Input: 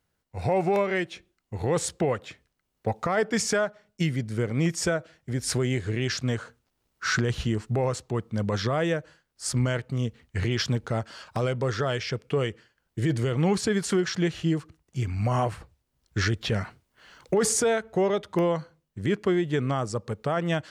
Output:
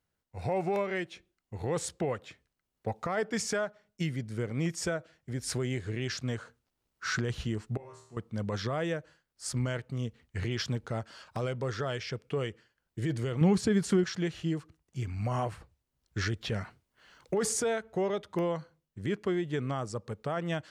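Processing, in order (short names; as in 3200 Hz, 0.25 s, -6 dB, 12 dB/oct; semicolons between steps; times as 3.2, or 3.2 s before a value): 7.77–8.17 resonator bank D#2 fifth, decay 0.61 s; 13.41–14.04 bell 120 Hz +8.5 dB 3 oct; gain -6.5 dB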